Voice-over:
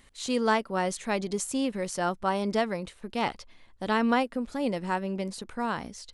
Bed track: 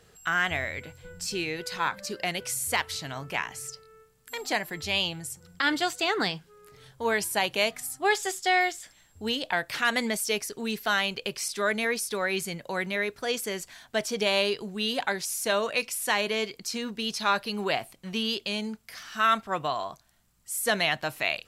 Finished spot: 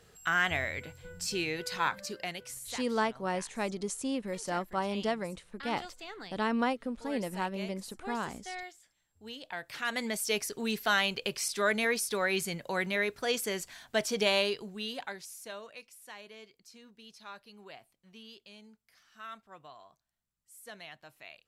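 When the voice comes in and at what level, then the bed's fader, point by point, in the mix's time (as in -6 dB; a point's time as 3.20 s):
2.50 s, -5.0 dB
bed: 1.93 s -2 dB
2.91 s -18.5 dB
9.06 s -18.5 dB
10.42 s -1.5 dB
14.27 s -1.5 dB
15.89 s -22 dB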